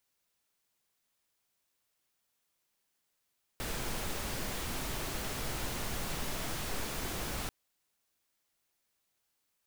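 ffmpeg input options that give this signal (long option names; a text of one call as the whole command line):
ffmpeg -f lavfi -i "anoisesrc=color=pink:amplitude=0.0767:duration=3.89:sample_rate=44100:seed=1" out.wav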